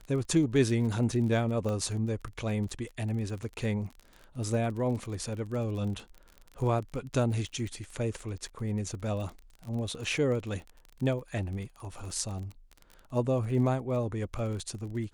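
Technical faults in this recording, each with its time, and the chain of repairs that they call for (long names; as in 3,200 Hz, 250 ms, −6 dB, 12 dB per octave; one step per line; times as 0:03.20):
surface crackle 29 per second −37 dBFS
0:01.69: click −23 dBFS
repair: click removal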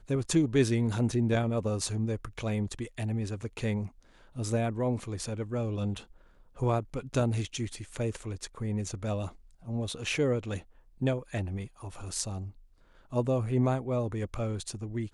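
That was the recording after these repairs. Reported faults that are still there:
0:01.69: click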